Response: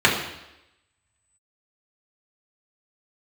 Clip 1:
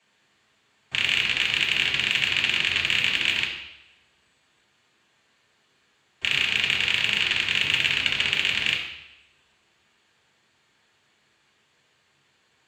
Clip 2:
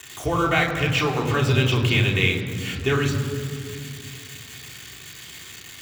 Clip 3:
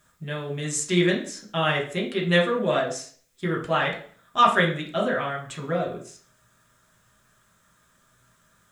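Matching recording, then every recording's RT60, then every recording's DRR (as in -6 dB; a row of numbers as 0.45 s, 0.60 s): 1; 0.90 s, 2.5 s, 0.45 s; -4.5 dB, -2.0 dB, -2.0 dB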